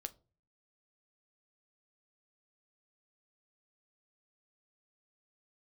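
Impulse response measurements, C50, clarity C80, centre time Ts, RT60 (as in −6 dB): 21.5 dB, 27.5 dB, 3 ms, 0.35 s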